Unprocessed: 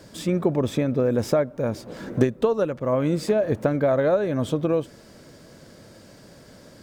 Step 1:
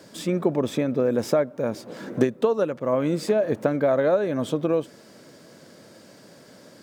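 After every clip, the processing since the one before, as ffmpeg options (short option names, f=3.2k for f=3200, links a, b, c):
-af "highpass=170"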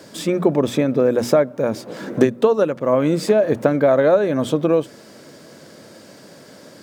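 -af "bandreject=f=60:t=h:w=6,bandreject=f=120:t=h:w=6,bandreject=f=180:t=h:w=6,bandreject=f=240:t=h:w=6,volume=6dB"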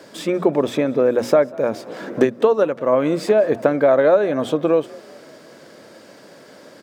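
-filter_complex "[0:a]bass=f=250:g=-8,treble=f=4k:g=-6,asplit=4[a][b][c][d];[b]adelay=193,afreqshift=45,volume=-23.5dB[e];[c]adelay=386,afreqshift=90,volume=-29dB[f];[d]adelay=579,afreqshift=135,volume=-34.5dB[g];[a][e][f][g]amix=inputs=4:normalize=0,volume=1dB"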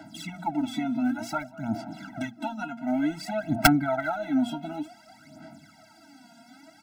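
-af "aphaser=in_gain=1:out_gain=1:delay=4.3:decay=0.74:speed=0.55:type=sinusoidal,aeval=exprs='(mod(0.562*val(0)+1,2)-1)/0.562':c=same,afftfilt=real='re*eq(mod(floor(b*sr/1024/320),2),0)':imag='im*eq(mod(floor(b*sr/1024/320),2),0)':win_size=1024:overlap=0.75,volume=-7.5dB"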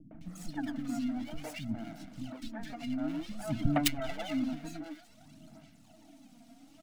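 -filter_complex "[0:a]acrossover=split=650|6800[a][b][c];[a]acompressor=mode=upward:threshold=-44dB:ratio=2.5[d];[b]aeval=exprs='abs(val(0))':c=same[e];[d][e][c]amix=inputs=3:normalize=0,acrossover=split=300|1800[f][g][h];[g]adelay=110[i];[h]adelay=210[j];[f][i][j]amix=inputs=3:normalize=0,volume=-4.5dB"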